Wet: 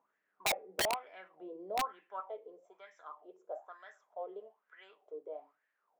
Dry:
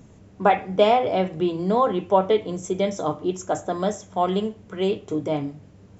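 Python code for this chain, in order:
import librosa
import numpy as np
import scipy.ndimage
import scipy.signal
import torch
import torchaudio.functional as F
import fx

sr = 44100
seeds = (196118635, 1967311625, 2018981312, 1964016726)

y = fx.highpass(x, sr, hz=fx.steps((0.0, 280.0), (2.2, 590.0)), slope=12)
y = fx.wah_lfo(y, sr, hz=1.1, low_hz=430.0, high_hz=1800.0, q=7.8)
y = (np.mod(10.0 ** (19.5 / 20.0) * y + 1.0, 2.0) - 1.0) / 10.0 ** (19.5 / 20.0)
y = y * 10.0 ** (-6.0 / 20.0)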